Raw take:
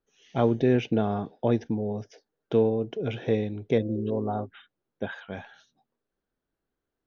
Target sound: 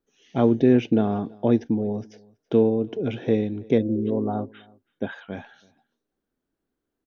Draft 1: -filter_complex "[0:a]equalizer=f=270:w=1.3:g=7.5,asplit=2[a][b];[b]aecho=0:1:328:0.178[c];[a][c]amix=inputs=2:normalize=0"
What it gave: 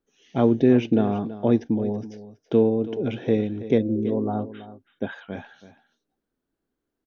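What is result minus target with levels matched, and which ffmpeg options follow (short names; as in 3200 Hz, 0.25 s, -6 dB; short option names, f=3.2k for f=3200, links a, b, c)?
echo-to-direct +11 dB
-filter_complex "[0:a]equalizer=f=270:w=1.3:g=7.5,asplit=2[a][b];[b]aecho=0:1:328:0.0501[c];[a][c]amix=inputs=2:normalize=0"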